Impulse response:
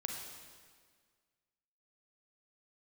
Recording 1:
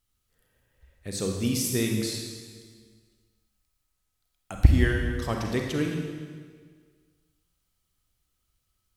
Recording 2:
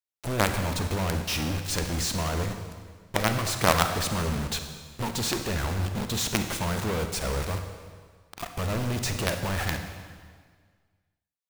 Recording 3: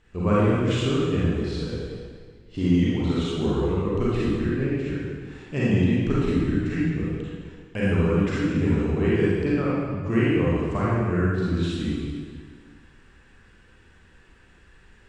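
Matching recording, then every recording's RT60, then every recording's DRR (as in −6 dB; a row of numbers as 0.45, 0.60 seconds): 1; 1.7, 1.7, 1.7 seconds; 1.0, 6.0, −8.5 decibels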